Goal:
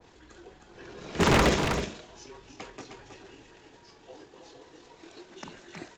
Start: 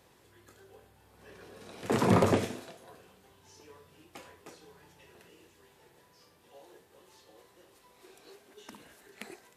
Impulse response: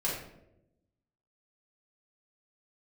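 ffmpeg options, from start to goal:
-af "aresample=16000,aresample=44100,afreqshift=-42,aeval=exprs='0.0794*(abs(mod(val(0)/0.0794+3,4)-2)-1)':c=same,aecho=1:1:500:0.473,atempo=1.6,adynamicequalizer=threshold=0.00355:dfrequency=1700:dqfactor=0.7:tfrequency=1700:tqfactor=0.7:attack=5:release=100:ratio=0.375:range=2.5:mode=boostabove:tftype=highshelf,volume=7dB"

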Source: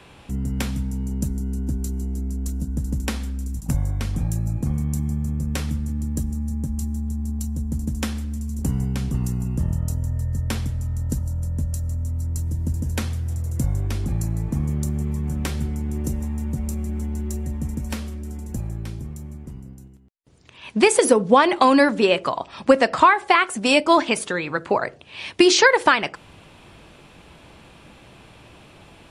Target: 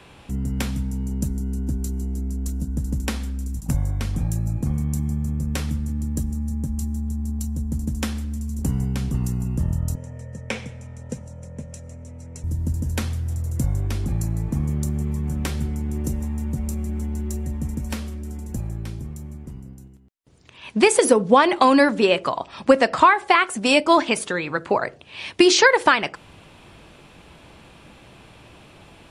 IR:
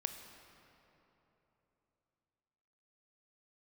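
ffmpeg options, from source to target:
-filter_complex "[0:a]asettb=1/sr,asplit=3[a][b][c];[a]atrim=end=9.954[d];[b]atrim=start=9.95:end=12.44,asetpts=PTS-STARTPTS,afade=t=in:d=0.004:c=qsin,afade=t=out:st=2.486:d=0.004:c=qsin,highpass=190,equalizer=f=310:t=q:w=4:g=-10,equalizer=f=500:t=q:w=4:g=9,equalizer=f=1.2k:t=q:w=4:g=-4,equalizer=f=2.3k:t=q:w=4:g=10,equalizer=f=4.5k:t=q:w=4:g=-8,equalizer=f=7.3k:t=q:w=4:g=-4,lowpass=f=8.1k:w=0.5412,lowpass=f=8.1k:w=1.3066[e];[c]atrim=start=12.436[f];[d][e]acrossfade=d=0.004:c1=hsin:c2=qsin[g];[g][f]acrossfade=d=0.004:c1=qsin:c2=hsin"

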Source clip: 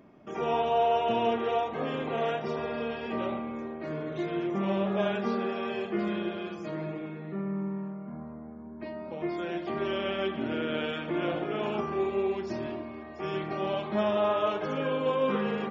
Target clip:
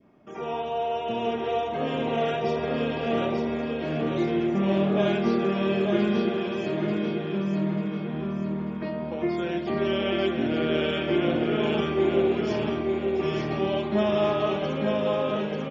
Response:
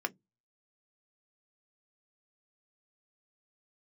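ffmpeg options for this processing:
-filter_complex "[0:a]dynaudnorm=f=270:g=11:m=8.5dB,asplit=2[a][b];[b]aecho=0:1:891|1782|2673|3564|4455:0.668|0.274|0.112|0.0461|0.0189[c];[a][c]amix=inputs=2:normalize=0,adynamicequalizer=threshold=0.0158:dfrequency=1100:dqfactor=0.84:tfrequency=1100:tqfactor=0.84:attack=5:release=100:ratio=0.375:range=3:mode=cutabove:tftype=bell,volume=-2.5dB"

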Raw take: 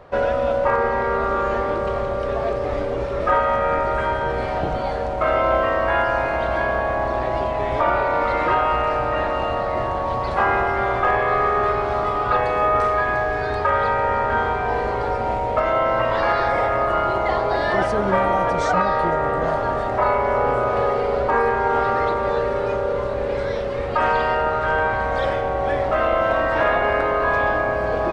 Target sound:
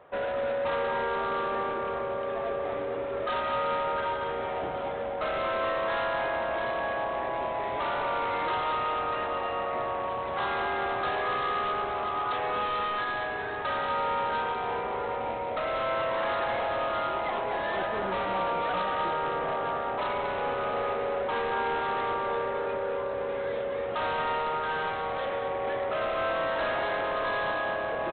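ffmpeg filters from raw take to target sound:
-filter_complex "[0:a]highpass=f=330:p=1,aresample=8000,volume=20.5dB,asoftclip=hard,volume=-20.5dB,aresample=44100,asplit=2[a][b];[b]adelay=227.4,volume=-6dB,highshelf=f=4k:g=-5.12[c];[a][c]amix=inputs=2:normalize=0,volume=-7dB"

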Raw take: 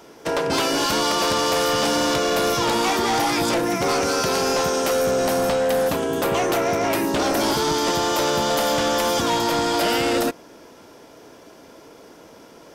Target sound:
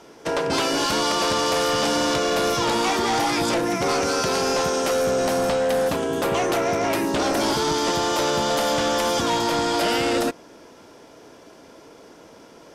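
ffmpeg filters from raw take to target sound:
-af "lowpass=11k,volume=-1dB"

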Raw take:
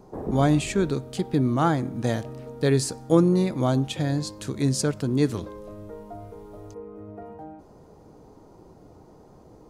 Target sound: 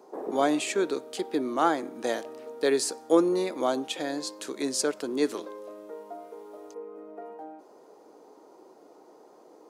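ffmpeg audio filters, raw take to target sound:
-af "highpass=f=320:w=0.5412,highpass=f=320:w=1.3066"

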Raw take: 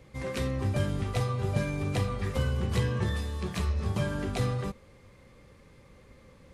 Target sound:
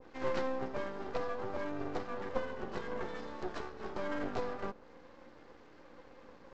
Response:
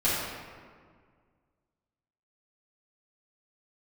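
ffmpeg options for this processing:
-af "acompressor=threshold=-32dB:ratio=2.5,flanger=delay=2.4:depth=2.8:regen=-43:speed=0.54:shape=triangular,aeval=exprs='val(0)+0.002*(sin(2*PI*60*n/s)+sin(2*PI*2*60*n/s)/2+sin(2*PI*3*60*n/s)/3+sin(2*PI*4*60*n/s)/4+sin(2*PI*5*60*n/s)/5)':c=same,highpass=f=250:w=0.5412,highpass=f=250:w=1.3066,equalizer=f=340:t=q:w=4:g=4,equalizer=f=510:t=q:w=4:g=5,equalizer=f=880:t=q:w=4:g=4,equalizer=f=1.5k:t=q:w=4:g=8,equalizer=f=2.3k:t=q:w=4:g=-10,equalizer=f=3.5k:t=q:w=4:g=-4,lowpass=f=5.1k:w=0.5412,lowpass=f=5.1k:w=1.3066,aresample=16000,aeval=exprs='max(val(0),0)':c=same,aresample=44100,adynamicequalizer=threshold=0.00126:dfrequency=1500:dqfactor=0.7:tfrequency=1500:tqfactor=0.7:attack=5:release=100:ratio=0.375:range=3:mode=cutabove:tftype=highshelf,volume=7dB"

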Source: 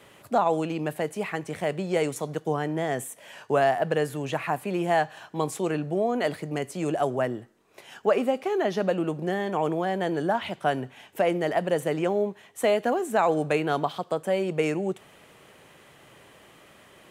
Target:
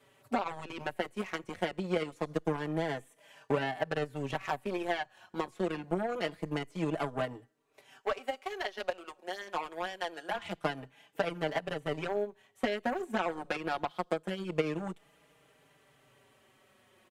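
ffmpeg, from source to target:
-filter_complex "[0:a]acrossover=split=4400[a][b];[b]acompressor=threshold=-51dB:ratio=4:attack=1:release=60[c];[a][c]amix=inputs=2:normalize=0,asplit=3[d][e][f];[d]afade=t=out:st=8:d=0.02[g];[e]highpass=740,afade=t=in:st=8:d=0.02,afade=t=out:st=10.35:d=0.02[h];[f]afade=t=in:st=10.35:d=0.02[i];[g][h][i]amix=inputs=3:normalize=0,acompressor=threshold=-29dB:ratio=4,aeval=exprs='0.158*(cos(1*acos(clip(val(0)/0.158,-1,1)))-cos(1*PI/2))+0.0178*(cos(7*acos(clip(val(0)/0.158,-1,1)))-cos(7*PI/2))':c=same,asplit=2[j][k];[k]adelay=4.7,afreqshift=-0.25[l];[j][l]amix=inputs=2:normalize=1,volume=4.5dB"

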